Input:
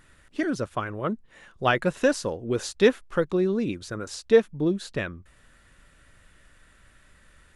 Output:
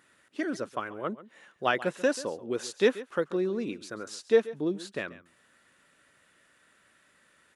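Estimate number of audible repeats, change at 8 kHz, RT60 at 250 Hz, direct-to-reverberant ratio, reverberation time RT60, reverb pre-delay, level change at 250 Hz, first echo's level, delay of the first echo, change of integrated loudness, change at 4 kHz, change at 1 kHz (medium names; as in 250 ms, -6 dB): 1, -4.0 dB, no reverb, no reverb, no reverb, no reverb, -6.0 dB, -17.0 dB, 136 ms, -4.5 dB, -4.0 dB, -4.0 dB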